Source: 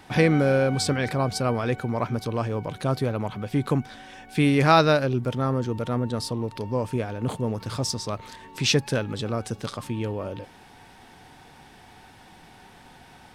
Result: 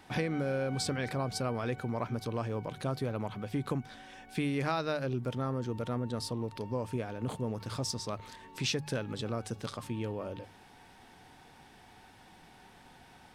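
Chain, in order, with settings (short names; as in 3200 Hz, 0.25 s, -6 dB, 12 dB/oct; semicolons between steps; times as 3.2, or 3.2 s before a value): notches 50/100/150 Hz; compressor 6:1, threshold -22 dBFS, peak gain reduction 10 dB; gain -6.5 dB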